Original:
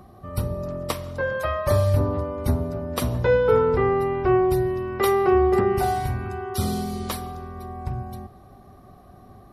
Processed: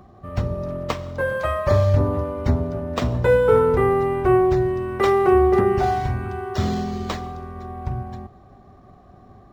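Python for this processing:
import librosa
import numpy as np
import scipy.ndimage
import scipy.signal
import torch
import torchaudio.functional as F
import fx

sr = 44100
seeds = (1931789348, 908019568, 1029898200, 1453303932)

p1 = np.sign(x) * np.maximum(np.abs(x) - 10.0 ** (-40.5 / 20.0), 0.0)
p2 = x + (p1 * 10.0 ** (-8.5 / 20.0))
y = np.interp(np.arange(len(p2)), np.arange(len(p2))[::4], p2[::4])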